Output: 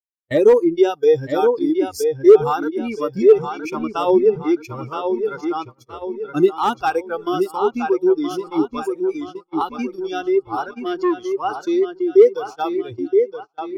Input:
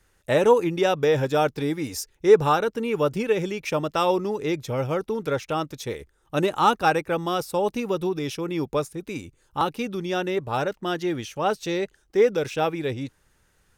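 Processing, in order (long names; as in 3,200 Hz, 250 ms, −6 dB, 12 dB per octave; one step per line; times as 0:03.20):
mu-law and A-law mismatch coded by A
0:08.10–0:08.80: double-tracking delay 13 ms −6 dB
noise reduction from a noise print of the clip's start 20 dB
on a send: delay with a low-pass on its return 971 ms, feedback 38%, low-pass 3,800 Hz, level −7 dB
on the sum: hard clipping −13 dBFS, distortion −15 dB
parametric band 380 Hz +14.5 dB 1.2 octaves
in parallel at 0 dB: downward compressor 6 to 1, threshold −22 dBFS, peak gain reduction 19 dB
0:03.65–0:04.43: on the sum: bass and treble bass +8 dB, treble −5 dB
noise gate −27 dBFS, range −31 dB
0:10.72–0:11.32: saturating transformer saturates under 560 Hz
level −4.5 dB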